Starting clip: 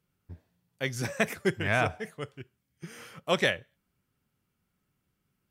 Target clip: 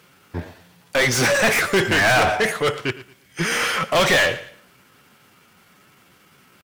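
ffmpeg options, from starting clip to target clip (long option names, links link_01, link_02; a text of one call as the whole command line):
ffmpeg -i in.wav -filter_complex "[0:a]atempo=0.83,asplit=2[link_01][link_02];[link_02]highpass=frequency=720:poles=1,volume=36dB,asoftclip=type=tanh:threshold=-11.5dB[link_03];[link_01][link_03]amix=inputs=2:normalize=0,lowpass=frequency=4500:poles=1,volume=-6dB,aecho=1:1:113|226|339:0.141|0.041|0.0119,volume=2dB" out.wav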